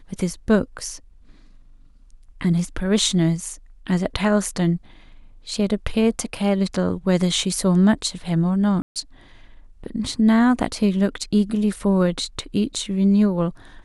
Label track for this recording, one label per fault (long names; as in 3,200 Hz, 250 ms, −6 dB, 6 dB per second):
8.820000	8.960000	drop-out 137 ms